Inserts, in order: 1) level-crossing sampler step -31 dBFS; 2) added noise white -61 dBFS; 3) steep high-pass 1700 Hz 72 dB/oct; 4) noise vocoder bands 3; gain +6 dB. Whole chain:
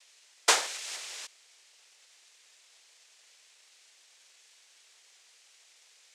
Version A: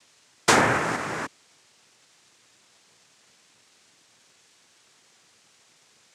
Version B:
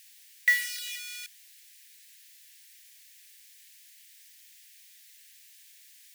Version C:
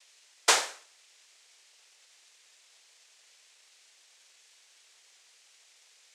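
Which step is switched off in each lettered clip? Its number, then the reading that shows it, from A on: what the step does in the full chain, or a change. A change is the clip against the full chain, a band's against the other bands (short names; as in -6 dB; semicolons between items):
3, 250 Hz band +15.5 dB; 4, crest factor change -5.0 dB; 1, momentary loudness spread change -8 LU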